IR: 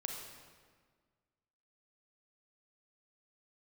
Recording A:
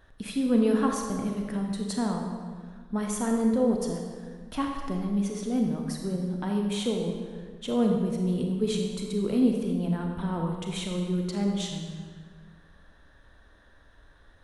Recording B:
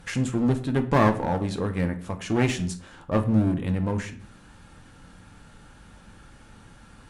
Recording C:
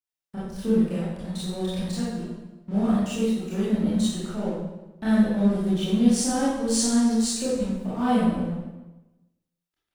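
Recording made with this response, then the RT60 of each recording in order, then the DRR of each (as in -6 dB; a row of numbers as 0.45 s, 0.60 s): A; 1.6 s, 0.55 s, 1.0 s; 1.5 dB, 6.0 dB, -10.0 dB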